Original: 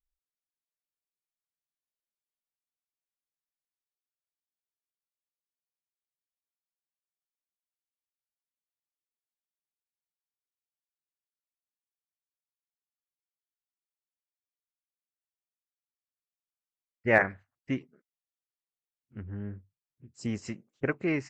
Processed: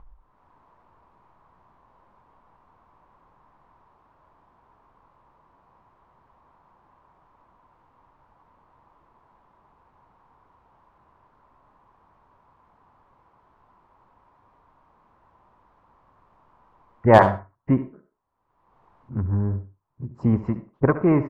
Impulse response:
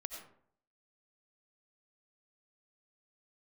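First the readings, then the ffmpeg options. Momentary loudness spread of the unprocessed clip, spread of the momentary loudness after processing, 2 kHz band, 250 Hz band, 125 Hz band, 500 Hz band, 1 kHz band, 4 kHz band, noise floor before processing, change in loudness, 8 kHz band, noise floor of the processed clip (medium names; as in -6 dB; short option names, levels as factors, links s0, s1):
19 LU, 19 LU, 0.0 dB, +11.0 dB, +15.0 dB, +11.0 dB, +15.0 dB, +7.5 dB, under -85 dBFS, +8.5 dB, no reading, -64 dBFS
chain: -filter_complex "[0:a]lowshelf=f=190:g=11.5,asplit=2[s0][s1];[s1]acompressor=mode=upward:threshold=0.0562:ratio=2.5,volume=0.794[s2];[s0][s2]amix=inputs=2:normalize=0,lowpass=f=1000:t=q:w=5.5,volume=1.58,asoftclip=hard,volume=0.631,aecho=1:1:71:0.224,asplit=2[s3][s4];[1:a]atrim=start_sample=2205,atrim=end_sample=6174[s5];[s4][s5]afir=irnorm=-1:irlink=0,volume=0.447[s6];[s3][s6]amix=inputs=2:normalize=0,volume=0.891"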